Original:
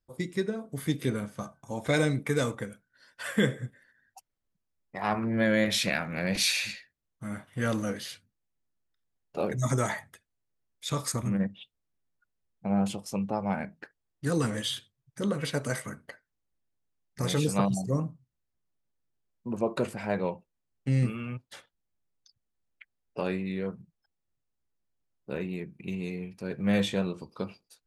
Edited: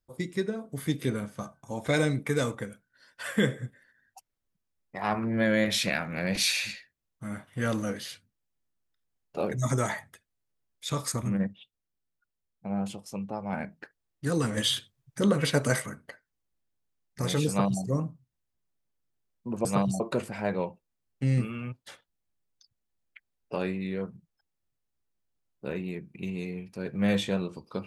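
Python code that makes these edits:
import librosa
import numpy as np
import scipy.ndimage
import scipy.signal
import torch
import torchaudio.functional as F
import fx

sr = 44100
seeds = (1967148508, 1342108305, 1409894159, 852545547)

y = fx.edit(x, sr, fx.clip_gain(start_s=11.53, length_s=2.0, db=-4.5),
    fx.clip_gain(start_s=14.57, length_s=1.29, db=5.5),
    fx.duplicate(start_s=17.48, length_s=0.35, to_s=19.65), tone=tone)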